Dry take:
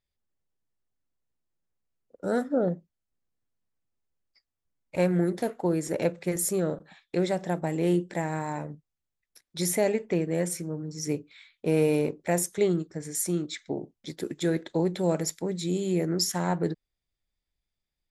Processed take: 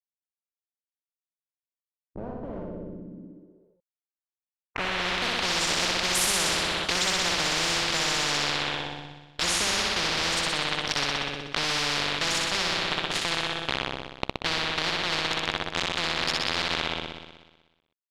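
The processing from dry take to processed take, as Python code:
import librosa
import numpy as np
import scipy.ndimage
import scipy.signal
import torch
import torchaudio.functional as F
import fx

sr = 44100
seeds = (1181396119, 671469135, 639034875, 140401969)

p1 = fx.doppler_pass(x, sr, speed_mps=13, closest_m=6.7, pass_at_s=6.88)
p2 = fx.rider(p1, sr, range_db=4, speed_s=2.0)
p3 = p1 + F.gain(torch.from_numpy(p2), 0.0).numpy()
p4 = fx.quant_dither(p3, sr, seeds[0], bits=6, dither='none')
p5 = p4 + fx.room_flutter(p4, sr, wall_m=10.6, rt60_s=1.2, dry=0)
p6 = fx.filter_sweep_lowpass(p5, sr, from_hz=210.0, to_hz=3400.0, start_s=3.07, end_s=5.53, q=3.8)
p7 = fx.spectral_comp(p6, sr, ratio=10.0)
y = F.gain(torch.from_numpy(p7), 3.0).numpy()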